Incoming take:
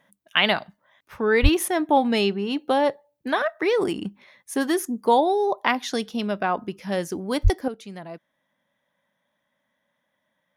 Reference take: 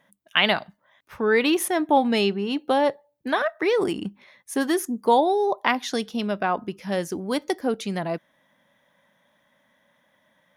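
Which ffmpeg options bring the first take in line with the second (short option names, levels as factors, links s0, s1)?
-filter_complex "[0:a]asplit=3[s0][s1][s2];[s0]afade=t=out:st=1.42:d=0.02[s3];[s1]highpass=f=140:w=0.5412,highpass=f=140:w=1.3066,afade=t=in:st=1.42:d=0.02,afade=t=out:st=1.54:d=0.02[s4];[s2]afade=t=in:st=1.54:d=0.02[s5];[s3][s4][s5]amix=inputs=3:normalize=0,asplit=3[s6][s7][s8];[s6]afade=t=out:st=7.43:d=0.02[s9];[s7]highpass=f=140:w=0.5412,highpass=f=140:w=1.3066,afade=t=in:st=7.43:d=0.02,afade=t=out:st=7.55:d=0.02[s10];[s8]afade=t=in:st=7.55:d=0.02[s11];[s9][s10][s11]amix=inputs=3:normalize=0,asetnsamples=n=441:p=0,asendcmd='7.68 volume volume 10dB',volume=1"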